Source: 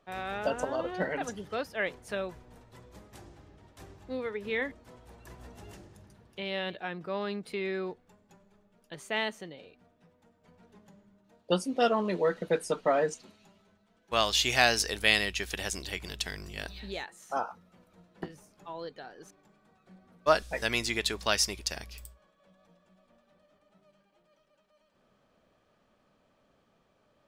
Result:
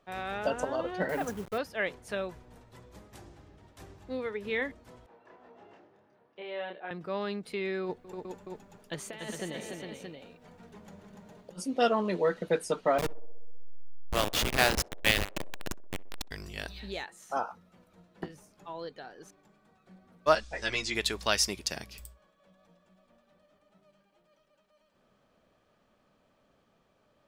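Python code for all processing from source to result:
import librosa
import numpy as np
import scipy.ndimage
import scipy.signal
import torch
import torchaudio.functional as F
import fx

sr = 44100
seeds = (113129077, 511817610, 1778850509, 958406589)

y = fx.chain(x, sr, fx.delta_hold(step_db=-43.5),
    fx.dynamic_eq(hz=4000.0, q=0.71, threshold_db=-54.0, ratio=4.0, max_db=-7),
    fx.leveller(passes=1), at=(1.09, 1.58))
y = fx.chain(y, sr, fx.highpass(hz=410.0, slope=12),
    fx.spacing_loss(db_at_10k=39),
    fx.doubler(ms=28.0, db=-2.5), at=(5.06, 6.91))
y = fx.chain(y, sr, fx.over_compress(threshold_db=-37.0, ratio=-0.5),
    fx.echo_multitap(ms=(203, 290, 408, 625), db=(-14.5, -5.5, -6.0, -7.0)), at=(7.84, 11.59))
y = fx.chain(y, sr, fx.delta_hold(step_db=-20.0),
    fx.echo_banded(ms=63, feedback_pct=74, hz=500.0, wet_db=-18.5),
    fx.upward_expand(threshold_db=-34.0, expansion=1.5), at=(12.98, 16.31))
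y = fx.chain(y, sr, fx.lowpass(hz=7200.0, slope=24),
    fx.high_shelf(hz=5400.0, db=4.5),
    fx.ensemble(), at=(20.35, 20.95))
y = fx.chain(y, sr, fx.highpass(hz=150.0, slope=12),
    fx.low_shelf(hz=240.0, db=9.5), at=(21.48, 21.99))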